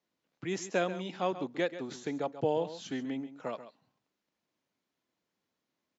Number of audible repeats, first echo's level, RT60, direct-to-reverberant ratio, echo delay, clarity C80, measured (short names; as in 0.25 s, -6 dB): 1, -13.0 dB, none, none, 0.135 s, none